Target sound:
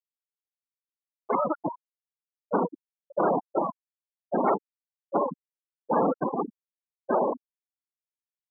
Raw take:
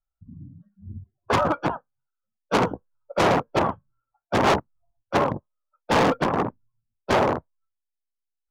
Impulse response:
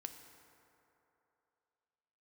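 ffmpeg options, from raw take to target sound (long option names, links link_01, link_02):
-filter_complex "[0:a]highpass=frequency=160:width=0.5412,highpass=frequency=160:width=1.3066,afftfilt=real='re*gte(hypot(re,im),0.251)':imag='im*gte(hypot(re,im),0.251)':win_size=1024:overlap=0.75,asplit=2[link_01][link_02];[link_02]acompressor=threshold=-33dB:ratio=6,volume=0dB[link_03];[link_01][link_03]amix=inputs=2:normalize=0,volume=-4.5dB"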